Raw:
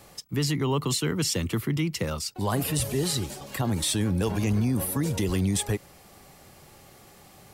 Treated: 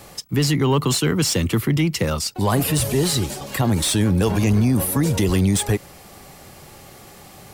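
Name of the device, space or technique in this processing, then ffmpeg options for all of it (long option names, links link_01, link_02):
saturation between pre-emphasis and de-emphasis: -af "highshelf=frequency=3300:gain=10,asoftclip=type=tanh:threshold=-16.5dB,highshelf=frequency=3300:gain=-10,volume=8.5dB"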